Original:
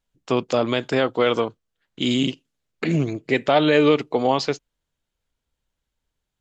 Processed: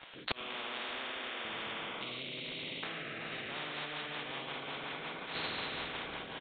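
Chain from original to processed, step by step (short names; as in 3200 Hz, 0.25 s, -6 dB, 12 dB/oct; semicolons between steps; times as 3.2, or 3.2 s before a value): spectral trails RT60 1.43 s; HPF 810 Hz 12 dB/oct, from 1.45 s 230 Hz; non-linear reverb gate 0.44 s flat, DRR -6 dB; compressor 6:1, threshold -22 dBFS, peak gain reduction 17 dB; rotary speaker horn 1 Hz, later 5.5 Hz, at 2.88; flipped gate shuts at -24 dBFS, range -38 dB; crackle 39/s -63 dBFS; downsampling 8000 Hz; spectral compressor 10:1; gain +6 dB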